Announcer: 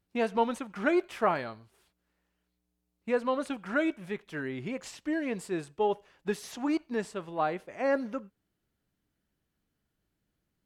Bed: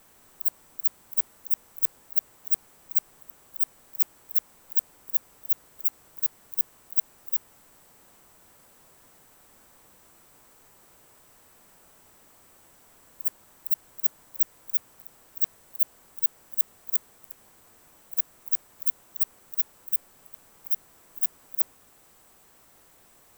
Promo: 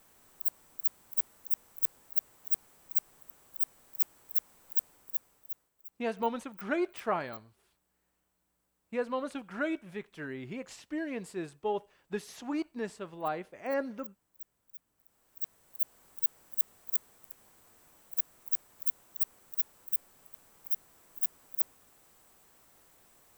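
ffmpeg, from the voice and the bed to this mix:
ffmpeg -i stem1.wav -i stem2.wav -filter_complex "[0:a]adelay=5850,volume=-4.5dB[link_01];[1:a]volume=13.5dB,afade=type=out:start_time=4.82:duration=0.9:silence=0.11885,afade=type=in:start_time=14.94:duration=1.15:silence=0.11885[link_02];[link_01][link_02]amix=inputs=2:normalize=0" out.wav

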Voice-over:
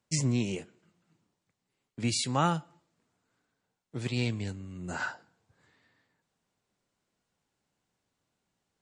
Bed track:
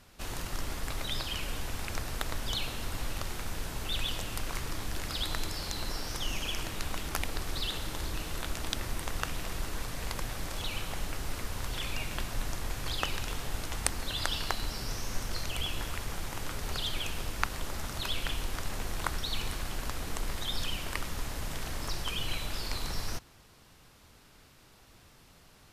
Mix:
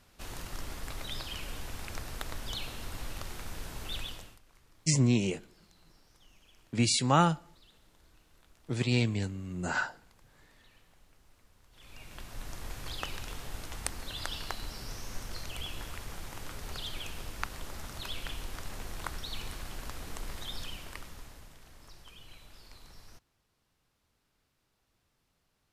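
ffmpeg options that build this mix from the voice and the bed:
ffmpeg -i stem1.wav -i stem2.wav -filter_complex "[0:a]adelay=4750,volume=3dB[link_01];[1:a]volume=17.5dB,afade=type=out:start_time=3.95:duration=0.44:silence=0.0707946,afade=type=in:start_time=11.71:duration=0.97:silence=0.0794328,afade=type=out:start_time=20.44:duration=1.12:silence=0.223872[link_02];[link_01][link_02]amix=inputs=2:normalize=0" out.wav

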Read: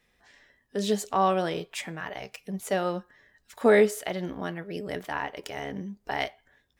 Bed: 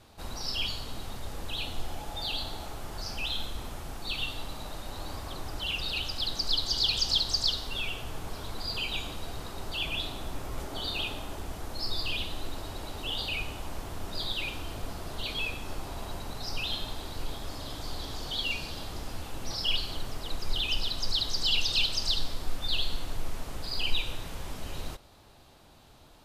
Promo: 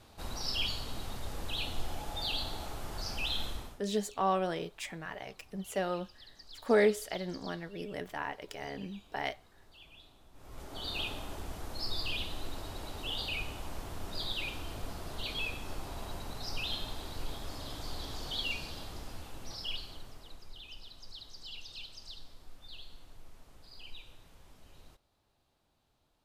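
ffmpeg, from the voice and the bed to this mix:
ffmpeg -i stem1.wav -i stem2.wav -filter_complex "[0:a]adelay=3050,volume=-6dB[link_01];[1:a]volume=18.5dB,afade=type=out:start_time=3.5:duration=0.31:silence=0.0794328,afade=type=in:start_time=10.33:duration=0.66:silence=0.1,afade=type=out:start_time=18.36:duration=2.17:silence=0.158489[link_02];[link_01][link_02]amix=inputs=2:normalize=0" out.wav

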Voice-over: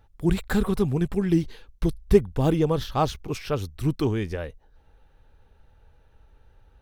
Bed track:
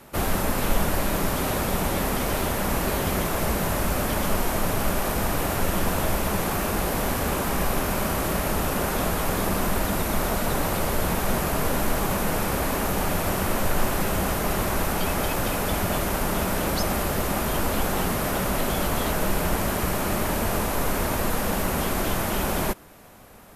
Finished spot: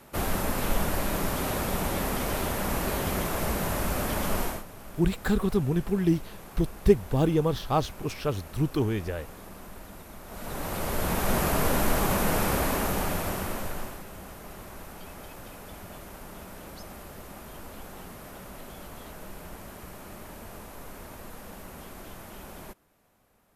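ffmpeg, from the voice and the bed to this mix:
ffmpeg -i stem1.wav -i stem2.wav -filter_complex "[0:a]adelay=4750,volume=-2dB[link_01];[1:a]volume=16dB,afade=type=out:start_time=4.43:duration=0.21:silence=0.149624,afade=type=in:start_time=10.26:duration=1.18:silence=0.1,afade=type=out:start_time=12.5:duration=1.53:silence=0.125893[link_02];[link_01][link_02]amix=inputs=2:normalize=0" out.wav

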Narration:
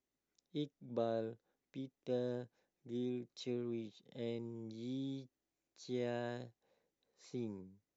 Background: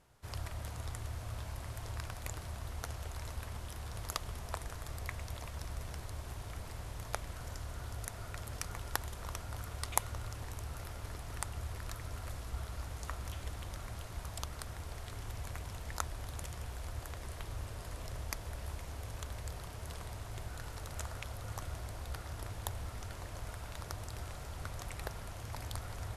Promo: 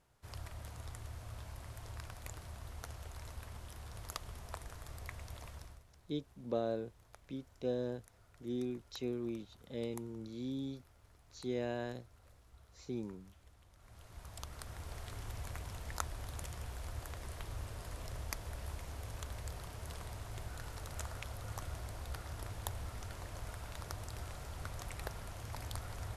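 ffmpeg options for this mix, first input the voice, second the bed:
ffmpeg -i stem1.wav -i stem2.wav -filter_complex "[0:a]adelay=5550,volume=2dB[link_01];[1:a]volume=13.5dB,afade=type=out:start_time=5.5:duration=0.33:silence=0.177828,afade=type=in:start_time=13.76:duration=1.2:silence=0.112202[link_02];[link_01][link_02]amix=inputs=2:normalize=0" out.wav

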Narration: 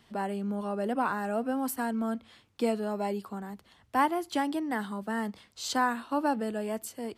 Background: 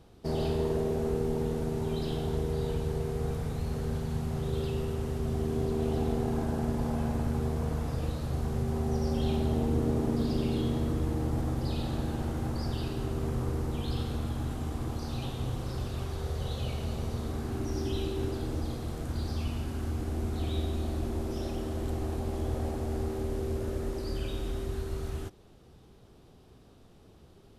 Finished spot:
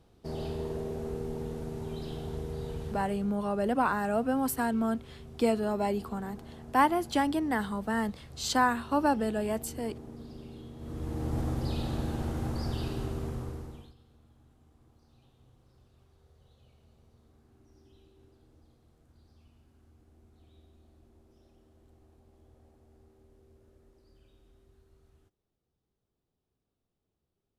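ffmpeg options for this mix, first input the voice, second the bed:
ffmpeg -i stem1.wav -i stem2.wav -filter_complex "[0:a]adelay=2800,volume=2dB[link_01];[1:a]volume=10dB,afade=type=out:start_time=2.82:duration=0.5:silence=0.298538,afade=type=in:start_time=10.77:duration=0.63:silence=0.158489,afade=type=out:start_time=12.94:duration=1:silence=0.0398107[link_02];[link_01][link_02]amix=inputs=2:normalize=0" out.wav

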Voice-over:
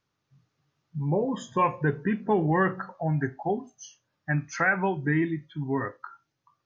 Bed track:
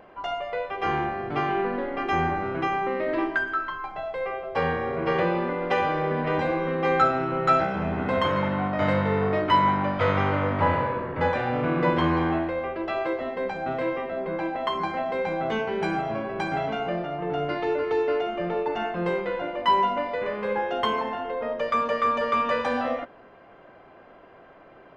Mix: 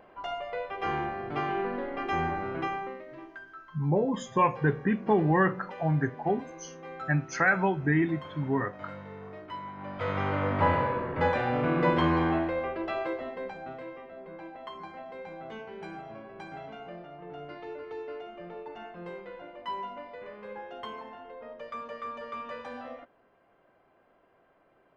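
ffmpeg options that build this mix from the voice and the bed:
ffmpeg -i stem1.wav -i stem2.wav -filter_complex "[0:a]adelay=2800,volume=0dB[link_01];[1:a]volume=13dB,afade=type=out:start_time=2.62:duration=0.43:silence=0.177828,afade=type=in:start_time=9.74:duration=0.88:silence=0.125893,afade=type=out:start_time=12.58:duration=1.27:silence=0.223872[link_02];[link_01][link_02]amix=inputs=2:normalize=0" out.wav

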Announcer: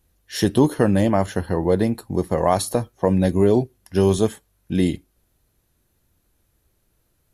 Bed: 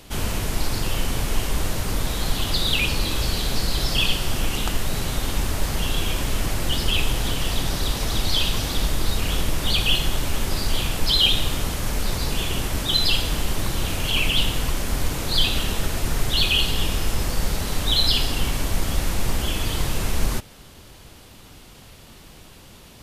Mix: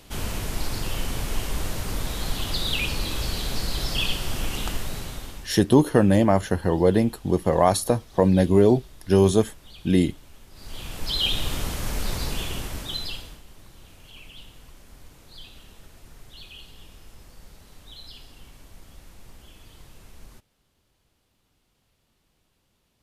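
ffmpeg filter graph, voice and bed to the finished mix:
ffmpeg -i stem1.wav -i stem2.wav -filter_complex "[0:a]adelay=5150,volume=0dB[link_01];[1:a]volume=17.5dB,afade=type=out:start_time=4.69:duration=0.86:silence=0.0891251,afade=type=in:start_time=10.53:duration=1.01:silence=0.0794328,afade=type=out:start_time=12.2:duration=1.21:silence=0.0891251[link_02];[link_01][link_02]amix=inputs=2:normalize=0" out.wav

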